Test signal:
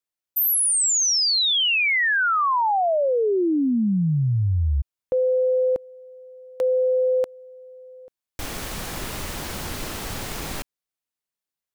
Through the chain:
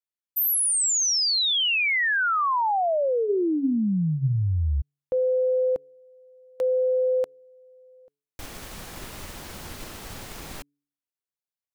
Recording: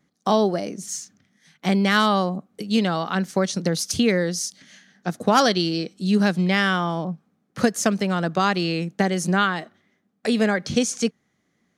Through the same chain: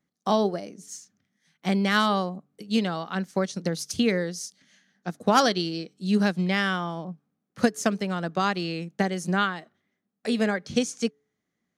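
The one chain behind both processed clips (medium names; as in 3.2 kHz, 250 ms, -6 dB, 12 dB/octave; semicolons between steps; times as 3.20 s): de-hum 143.7 Hz, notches 3; upward expansion 1.5:1, over -33 dBFS; trim -1.5 dB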